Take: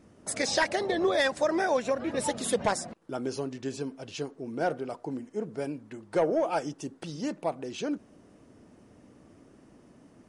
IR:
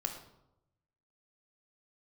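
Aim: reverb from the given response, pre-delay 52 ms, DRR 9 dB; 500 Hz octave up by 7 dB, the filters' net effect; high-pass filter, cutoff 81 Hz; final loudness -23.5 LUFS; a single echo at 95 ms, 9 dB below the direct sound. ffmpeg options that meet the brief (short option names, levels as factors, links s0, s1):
-filter_complex "[0:a]highpass=81,equalizer=f=500:t=o:g=8.5,aecho=1:1:95:0.355,asplit=2[s0][s1];[1:a]atrim=start_sample=2205,adelay=52[s2];[s1][s2]afir=irnorm=-1:irlink=0,volume=0.299[s3];[s0][s3]amix=inputs=2:normalize=0,volume=1.06"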